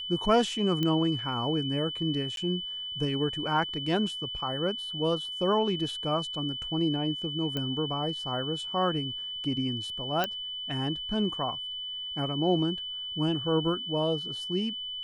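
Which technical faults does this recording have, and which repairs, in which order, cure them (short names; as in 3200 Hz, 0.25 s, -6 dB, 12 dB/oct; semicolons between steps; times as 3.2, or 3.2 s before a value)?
tone 3000 Hz -34 dBFS
0.83 pop -16 dBFS
2.36–2.37 gap 12 ms
7.57 pop -18 dBFS
10.24 pop -13 dBFS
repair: de-click; notch 3000 Hz, Q 30; interpolate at 2.36, 12 ms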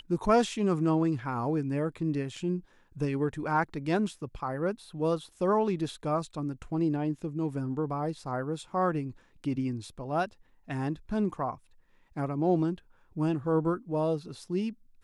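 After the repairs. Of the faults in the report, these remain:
none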